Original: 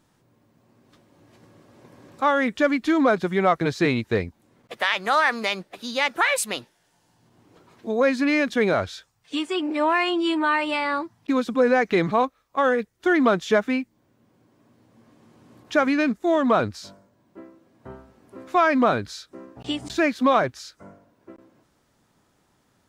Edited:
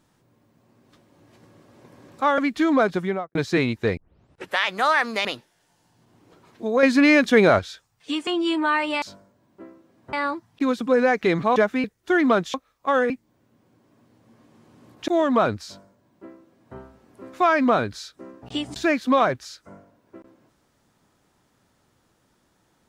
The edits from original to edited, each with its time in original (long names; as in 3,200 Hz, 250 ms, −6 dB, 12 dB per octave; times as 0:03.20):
0:02.38–0:02.66: remove
0:03.25–0:03.63: fade out and dull
0:04.25: tape start 0.60 s
0:05.53–0:06.49: remove
0:08.07–0:08.83: clip gain +5.5 dB
0:09.51–0:10.06: remove
0:12.24–0:12.80: swap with 0:13.50–0:13.78
0:15.76–0:16.22: remove
0:16.79–0:17.90: duplicate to 0:10.81